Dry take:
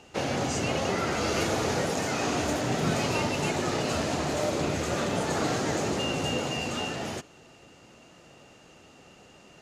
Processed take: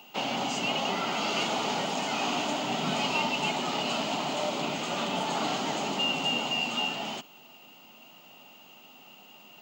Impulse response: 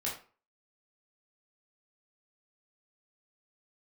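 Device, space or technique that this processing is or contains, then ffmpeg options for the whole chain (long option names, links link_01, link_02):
old television with a line whistle: -af "highpass=frequency=190:width=0.5412,highpass=frequency=190:width=1.3066,equalizer=frequency=340:width_type=q:width=4:gain=-8,equalizer=frequency=490:width_type=q:width=4:gain=-10,equalizer=frequency=870:width_type=q:width=4:gain=5,equalizer=frequency=1700:width_type=q:width=4:gain=-9,equalizer=frequency=3000:width_type=q:width=4:gain=9,equalizer=frequency=5800:width_type=q:width=4:gain=-5,lowpass=frequency=7300:width=0.5412,lowpass=frequency=7300:width=1.3066,aeval=exprs='val(0)+0.00141*sin(2*PI*15625*n/s)':channel_layout=same"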